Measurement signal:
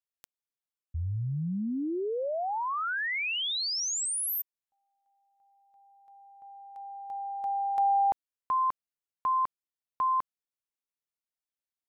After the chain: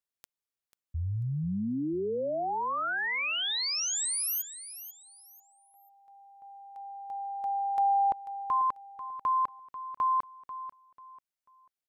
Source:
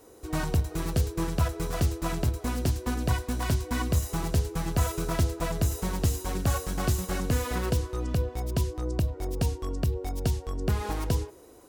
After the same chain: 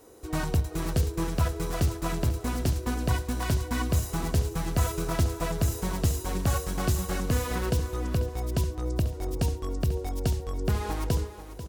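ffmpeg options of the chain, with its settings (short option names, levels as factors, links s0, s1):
-af "aecho=1:1:491|982|1473:0.224|0.0649|0.0188"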